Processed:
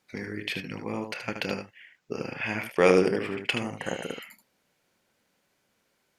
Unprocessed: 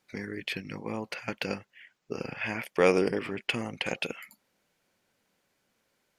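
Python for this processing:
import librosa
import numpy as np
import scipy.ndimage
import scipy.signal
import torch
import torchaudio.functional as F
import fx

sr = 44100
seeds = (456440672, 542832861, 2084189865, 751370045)

y = fx.room_early_taps(x, sr, ms=(28, 76), db=(-14.5, -7.0))
y = fx.cheby_harmonics(y, sr, harmonics=(7,), levels_db=(-38,), full_scale_db=-9.0)
y = fx.spec_repair(y, sr, seeds[0], start_s=3.82, length_s=0.39, low_hz=2000.0, high_hz=5900.0, source='before')
y = F.gain(torch.from_numpy(y), 2.0).numpy()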